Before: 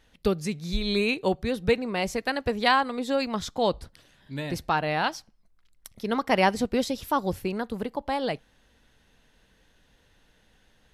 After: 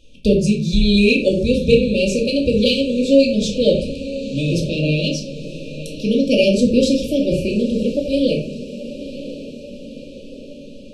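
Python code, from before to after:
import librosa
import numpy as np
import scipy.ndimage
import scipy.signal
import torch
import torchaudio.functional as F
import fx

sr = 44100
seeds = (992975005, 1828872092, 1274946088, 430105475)

p1 = scipy.signal.sosfilt(scipy.signal.butter(4, 9300.0, 'lowpass', fs=sr, output='sos'), x)
p2 = fx.echo_diffused(p1, sr, ms=979, feedback_pct=57, wet_db=-14.5)
p3 = fx.room_shoebox(p2, sr, seeds[0], volume_m3=400.0, walls='furnished', distance_m=2.3)
p4 = 10.0 ** (-20.0 / 20.0) * np.tanh(p3 / 10.0 ** (-20.0 / 20.0))
p5 = p3 + (p4 * librosa.db_to_amplitude(-7.5))
p6 = fx.brickwall_bandstop(p5, sr, low_hz=630.0, high_hz=2300.0)
y = p6 * librosa.db_to_amplitude(4.5)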